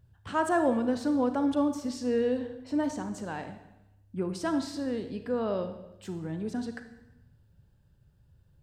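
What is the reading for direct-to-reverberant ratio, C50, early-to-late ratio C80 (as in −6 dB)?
8.0 dB, 9.5 dB, 12.0 dB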